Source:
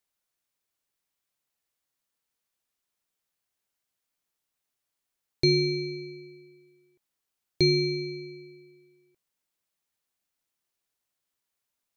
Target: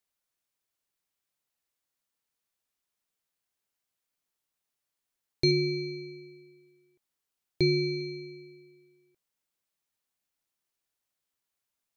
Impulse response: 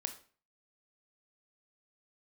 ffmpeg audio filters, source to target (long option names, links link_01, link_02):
-filter_complex "[0:a]asettb=1/sr,asplit=3[link_01][link_02][link_03];[link_01]atrim=end=5.514[link_04];[link_02]atrim=start=5.51:end=8.01,asetpts=PTS-STARTPTS,afade=type=in:duration=0.004:curve=qsin,afade=type=out:start_time=2.496:duration=0.004:curve=qsin,acrossover=split=4200[link_05][link_06];[link_06]acompressor=threshold=-46dB:ratio=4:attack=1:release=60[link_07];[link_05][link_07]amix=inputs=2:normalize=0[link_08];[link_03]atrim=start=8.006[link_09];[link_04][link_08]acrossfade=duration=0.004:curve1=hsin:curve2=qsin[link_10];[link_10][link_09]acrossfade=duration=0.004:curve1=qsin:curve2=hsin,volume=-2dB"